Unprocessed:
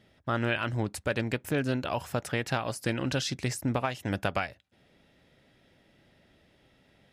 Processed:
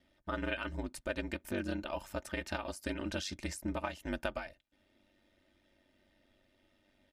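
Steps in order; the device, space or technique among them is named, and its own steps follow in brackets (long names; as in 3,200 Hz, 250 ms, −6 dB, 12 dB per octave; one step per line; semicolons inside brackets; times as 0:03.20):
ring-modulated robot voice (ring modulation 48 Hz; comb filter 3.3 ms, depth 68%)
level −6.5 dB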